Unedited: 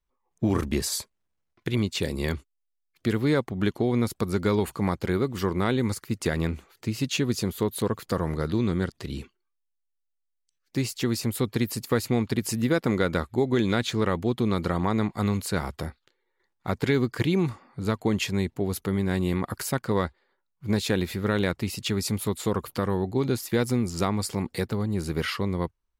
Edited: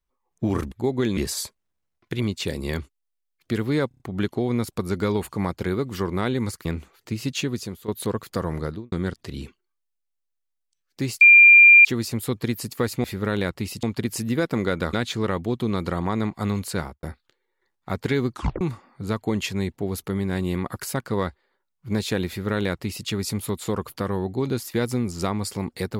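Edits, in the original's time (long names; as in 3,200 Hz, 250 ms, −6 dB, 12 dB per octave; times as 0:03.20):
0:03.43: stutter 0.03 s, 5 plays
0:06.08–0:06.41: remove
0:07.15–0:07.64: fade out, to −13.5 dB
0:08.37–0:08.68: fade out and dull
0:10.97: insert tone 2,390 Hz −7 dBFS 0.64 s
0:13.26–0:13.71: move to 0:00.72
0:15.56–0:15.81: fade out and dull
0:17.10: tape stop 0.29 s
0:21.06–0:21.85: duplicate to 0:12.16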